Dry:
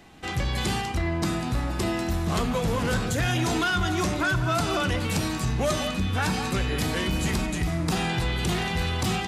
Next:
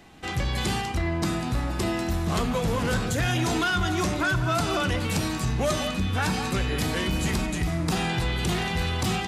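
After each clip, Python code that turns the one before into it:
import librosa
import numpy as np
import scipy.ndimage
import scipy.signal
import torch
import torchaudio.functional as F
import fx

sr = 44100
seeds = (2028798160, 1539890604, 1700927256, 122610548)

y = x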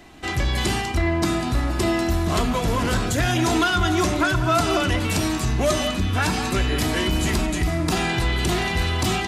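y = x + 0.37 * np.pad(x, (int(3.0 * sr / 1000.0), 0))[:len(x)]
y = F.gain(torch.from_numpy(y), 4.0).numpy()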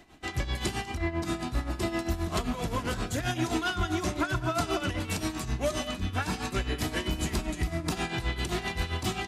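y = x * (1.0 - 0.73 / 2.0 + 0.73 / 2.0 * np.cos(2.0 * np.pi * 7.6 * (np.arange(len(x)) / sr)))
y = F.gain(torch.from_numpy(y), -6.0).numpy()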